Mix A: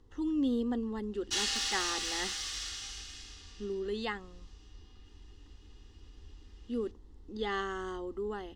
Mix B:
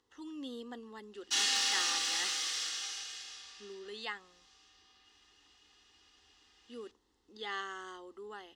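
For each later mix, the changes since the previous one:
speech: add high-pass 1.4 kHz 6 dB/octave; background: send +10.5 dB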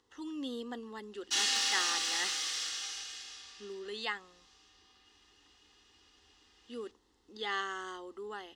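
speech +4.0 dB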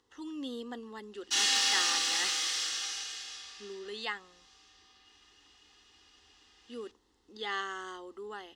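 background: send +6.0 dB

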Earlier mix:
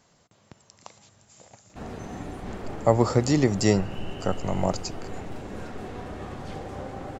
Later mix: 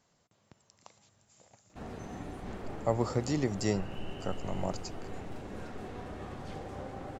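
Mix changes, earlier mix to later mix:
speech -9.5 dB; background -5.5 dB

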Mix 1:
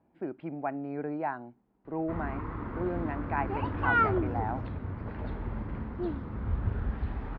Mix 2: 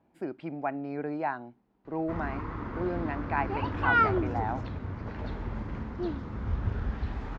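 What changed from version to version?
speech: remove distance through air 390 m; background: remove distance through air 280 m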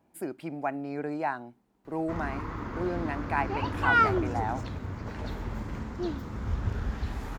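master: remove distance through air 190 m

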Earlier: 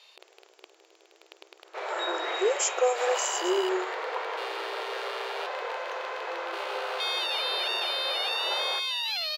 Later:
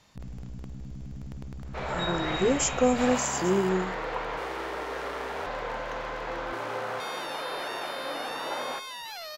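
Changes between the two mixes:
first sound: add high-order bell 3.3 kHz -12.5 dB 1.2 oct; master: remove brick-wall FIR high-pass 340 Hz

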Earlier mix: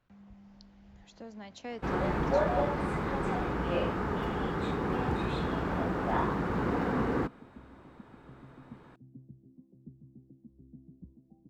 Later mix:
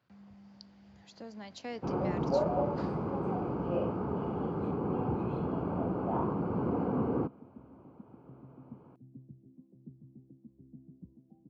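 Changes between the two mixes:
speech: add peaking EQ 4.7 kHz +9 dB 0.22 oct; first sound: add boxcar filter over 24 samples; master: add high-pass 84 Hz 24 dB/octave

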